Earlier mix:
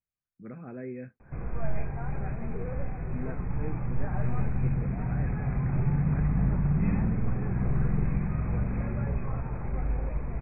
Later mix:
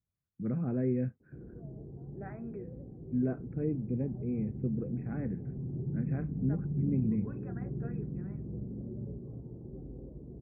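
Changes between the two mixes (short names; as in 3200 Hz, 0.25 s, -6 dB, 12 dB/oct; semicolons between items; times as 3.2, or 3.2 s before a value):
first voice: add tilt -4.5 dB/oct; background: add ladder low-pass 420 Hz, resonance 50%; master: add HPF 93 Hz 12 dB/oct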